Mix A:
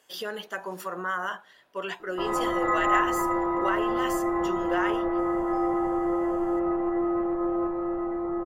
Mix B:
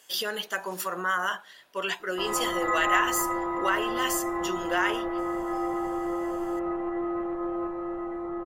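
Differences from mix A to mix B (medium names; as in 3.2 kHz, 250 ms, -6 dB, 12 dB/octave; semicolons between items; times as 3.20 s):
background -4.5 dB; master: add treble shelf 2.1 kHz +10.5 dB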